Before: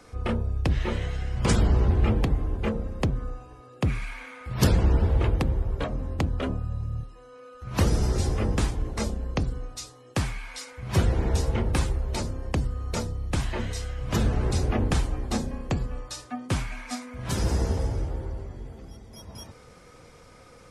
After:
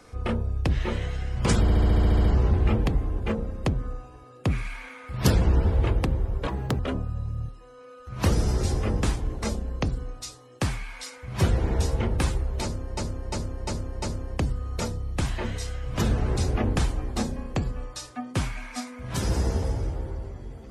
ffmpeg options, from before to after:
-filter_complex "[0:a]asplit=16[s0][s1][s2][s3][s4][s5][s6][s7][s8][s9][s10][s11][s12][s13][s14][s15];[s0]atrim=end=1.682[s16];[s1]atrim=start=1.608:end=1.682[s17];[s2]atrim=start=1.608:end=1.682[s18];[s3]atrim=start=1.608:end=1.682[s19];[s4]atrim=start=1.608:end=1.682[s20];[s5]atrim=start=1.608:end=1.682[s21];[s6]atrim=start=1.608:end=1.682[s22];[s7]atrim=start=1.608:end=1.682[s23];[s8]atrim=start=1.608:end=1.682[s24];[s9]atrim=start=1.608:end=5.854[s25];[s10]atrim=start=5.85:end=6.34,asetpts=PTS-STARTPTS,asetrate=69237,aresample=44100[s26];[s11]atrim=start=6.336:end=12.522[s27];[s12]atrim=start=12.168:end=12.522[s28];[s13]atrim=start=12.168:end=12.522[s29];[s14]atrim=start=12.168:end=12.522[s30];[s15]atrim=start=12.168[s31];[s16][s17]acrossfade=d=0.004:c1=hsin:c2=hsin[s32];[s32][s18]acrossfade=d=0.004:c1=hsin:c2=hsin[s33];[s33][s19]acrossfade=d=0.004:c1=hsin:c2=hsin[s34];[s34][s20]acrossfade=d=0.004:c1=hsin:c2=hsin[s35];[s35][s21]acrossfade=d=0.004:c1=hsin:c2=hsin[s36];[s36][s22]acrossfade=d=0.004:c1=hsin:c2=hsin[s37];[s37][s23]acrossfade=d=0.004:c1=hsin:c2=hsin[s38];[s38][s24]acrossfade=d=0.004:c1=hsin:c2=hsin[s39];[s39][s25]acrossfade=d=0.004:c1=hsin:c2=hsin[s40];[s40][s26]acrossfade=d=0.004:c1=hsin:c2=hsin[s41];[s41][s27]acrossfade=d=0.004:c1=hsin:c2=hsin[s42];[s42][s28]acrossfade=d=0.004:c1=hsin:c2=hsin[s43];[s43][s29]acrossfade=d=0.004:c1=hsin:c2=hsin[s44];[s44][s30]acrossfade=d=0.004:c1=hsin:c2=hsin[s45];[s45][s31]acrossfade=d=0.004:c1=hsin:c2=hsin"

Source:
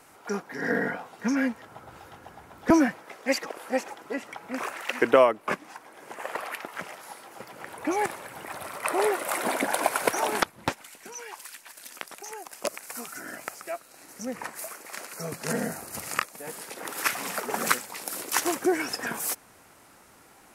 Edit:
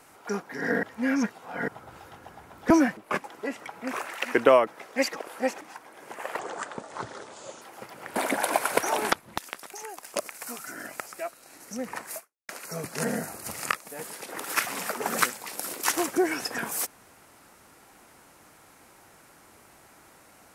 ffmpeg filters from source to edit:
-filter_complex "[0:a]asplit=12[s0][s1][s2][s3][s4][s5][s6][s7][s8][s9][s10][s11];[s0]atrim=end=0.832[s12];[s1]atrim=start=0.828:end=1.682,asetpts=PTS-STARTPTS,areverse[s13];[s2]atrim=start=1.678:end=2.972[s14];[s3]atrim=start=5.338:end=5.612[s15];[s4]atrim=start=3.908:end=5.342[s16];[s5]atrim=start=2.968:end=3.912[s17];[s6]atrim=start=5.608:end=6.394[s18];[s7]atrim=start=6.39:end=7.2,asetpts=PTS-STARTPTS,asetrate=29106,aresample=44100[s19];[s8]atrim=start=7.196:end=7.742[s20];[s9]atrim=start=9.458:end=10.682[s21];[s10]atrim=start=11.858:end=14.97,asetpts=PTS-STARTPTS,afade=t=out:st=2.802:d=0.31:c=exp[s22];[s11]atrim=start=14.97,asetpts=PTS-STARTPTS,afade=t=in:d=0.004:c=hsin[s23];[s12][s13]acrossfade=d=0.004:c1=hsin:c2=hsin[s24];[s24][s14]acrossfade=d=0.004:c1=hsin:c2=hsin[s25];[s25][s15]acrossfade=d=0.004:c1=hsin:c2=hsin[s26];[s26][s16]acrossfade=d=0.004:c1=hsin:c2=hsin[s27];[s27][s17]acrossfade=d=0.004:c1=hsin:c2=hsin[s28];[s28][s18]acrossfade=d=0.004:c1=hsin:c2=hsin[s29];[s29][s19]acrossfade=d=0.004:c1=hsin:c2=hsin[s30];[s30][s20]acrossfade=d=0.004:c1=hsin:c2=hsin[s31];[s31][s21]acrossfade=d=0.004:c1=hsin:c2=hsin[s32];[s22][s23]concat=n=2:v=0:a=1[s33];[s32][s33]acrossfade=d=0.004:c1=hsin:c2=hsin"

